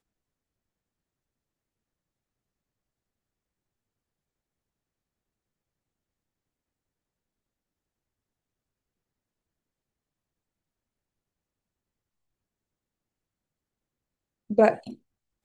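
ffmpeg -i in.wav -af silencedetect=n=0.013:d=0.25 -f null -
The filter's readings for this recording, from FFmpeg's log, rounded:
silence_start: 0.00
silence_end: 14.50 | silence_duration: 14.50
silence_start: 14.93
silence_end: 15.45 | silence_duration: 0.51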